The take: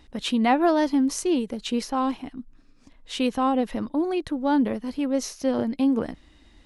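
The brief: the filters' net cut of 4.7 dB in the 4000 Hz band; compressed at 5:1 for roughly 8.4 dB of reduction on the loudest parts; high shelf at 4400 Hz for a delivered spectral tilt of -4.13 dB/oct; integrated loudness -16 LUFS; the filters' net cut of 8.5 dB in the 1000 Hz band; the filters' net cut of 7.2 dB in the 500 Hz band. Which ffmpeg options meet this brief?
-af "equalizer=f=500:t=o:g=-7.5,equalizer=f=1k:t=o:g=-8,equalizer=f=4k:t=o:g=-3.5,highshelf=f=4.4k:g=-4,acompressor=threshold=-30dB:ratio=5,volume=18.5dB"

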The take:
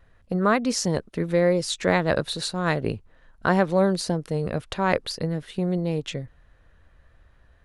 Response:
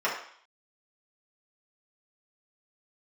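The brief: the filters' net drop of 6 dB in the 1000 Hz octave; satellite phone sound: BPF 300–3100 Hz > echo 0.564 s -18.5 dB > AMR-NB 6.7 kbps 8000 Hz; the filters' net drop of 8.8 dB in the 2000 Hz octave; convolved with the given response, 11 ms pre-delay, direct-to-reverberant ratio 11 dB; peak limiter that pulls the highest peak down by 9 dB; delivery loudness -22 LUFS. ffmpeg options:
-filter_complex "[0:a]equalizer=f=1k:t=o:g=-6,equalizer=f=2k:t=o:g=-8.5,alimiter=limit=-16.5dB:level=0:latency=1,asplit=2[a][b];[1:a]atrim=start_sample=2205,adelay=11[c];[b][c]afir=irnorm=-1:irlink=0,volume=-23.5dB[d];[a][d]amix=inputs=2:normalize=0,highpass=300,lowpass=3.1k,aecho=1:1:564:0.119,volume=11dB" -ar 8000 -c:a libopencore_amrnb -b:a 6700

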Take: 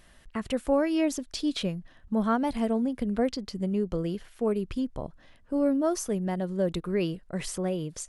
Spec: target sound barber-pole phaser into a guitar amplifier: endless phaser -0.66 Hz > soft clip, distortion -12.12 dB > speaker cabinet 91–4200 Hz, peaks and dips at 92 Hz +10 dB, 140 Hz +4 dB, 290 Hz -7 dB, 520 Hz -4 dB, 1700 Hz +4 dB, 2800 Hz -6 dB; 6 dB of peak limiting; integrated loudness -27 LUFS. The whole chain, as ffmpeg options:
-filter_complex "[0:a]alimiter=limit=-20dB:level=0:latency=1,asplit=2[a][b];[b]afreqshift=-0.66[c];[a][c]amix=inputs=2:normalize=1,asoftclip=threshold=-30.5dB,highpass=91,equalizer=f=92:t=q:w=4:g=10,equalizer=f=140:t=q:w=4:g=4,equalizer=f=290:t=q:w=4:g=-7,equalizer=f=520:t=q:w=4:g=-4,equalizer=f=1.7k:t=q:w=4:g=4,equalizer=f=2.8k:t=q:w=4:g=-6,lowpass=f=4.2k:w=0.5412,lowpass=f=4.2k:w=1.3066,volume=12dB"

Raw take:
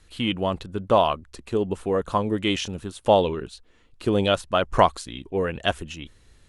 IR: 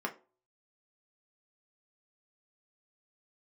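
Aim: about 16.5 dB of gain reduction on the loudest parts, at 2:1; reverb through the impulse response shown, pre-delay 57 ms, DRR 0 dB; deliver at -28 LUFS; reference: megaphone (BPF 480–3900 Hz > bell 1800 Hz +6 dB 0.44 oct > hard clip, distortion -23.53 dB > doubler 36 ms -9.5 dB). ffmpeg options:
-filter_complex "[0:a]acompressor=threshold=-43dB:ratio=2,asplit=2[a][b];[1:a]atrim=start_sample=2205,adelay=57[c];[b][c]afir=irnorm=-1:irlink=0,volume=-4.5dB[d];[a][d]amix=inputs=2:normalize=0,highpass=480,lowpass=3.9k,equalizer=f=1.8k:t=o:w=0.44:g=6,asoftclip=type=hard:threshold=-24dB,asplit=2[e][f];[f]adelay=36,volume=-9.5dB[g];[e][g]amix=inputs=2:normalize=0,volume=8.5dB"

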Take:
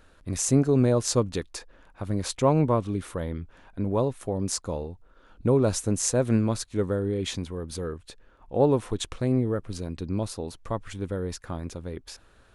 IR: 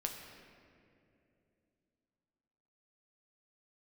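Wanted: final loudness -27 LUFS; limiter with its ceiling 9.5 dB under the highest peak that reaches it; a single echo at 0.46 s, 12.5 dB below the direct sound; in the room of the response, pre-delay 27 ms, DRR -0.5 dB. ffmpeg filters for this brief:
-filter_complex "[0:a]alimiter=limit=-16.5dB:level=0:latency=1,aecho=1:1:460:0.237,asplit=2[a][b];[1:a]atrim=start_sample=2205,adelay=27[c];[b][c]afir=irnorm=-1:irlink=0,volume=0dB[d];[a][d]amix=inputs=2:normalize=0,volume=-1dB"

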